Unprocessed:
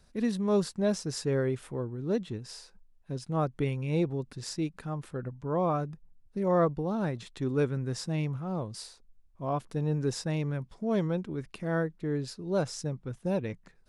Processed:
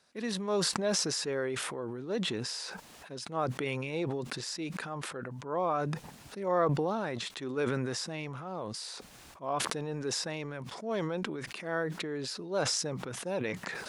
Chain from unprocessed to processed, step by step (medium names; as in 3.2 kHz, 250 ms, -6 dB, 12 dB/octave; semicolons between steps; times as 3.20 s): frequency weighting A; decay stretcher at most 21 dB/s